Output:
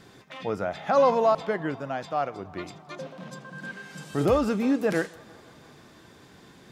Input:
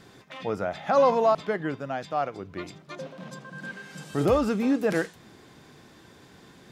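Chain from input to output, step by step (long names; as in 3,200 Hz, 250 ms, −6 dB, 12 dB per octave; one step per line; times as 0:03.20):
feedback echo with a band-pass in the loop 167 ms, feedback 83%, band-pass 940 Hz, level −22 dB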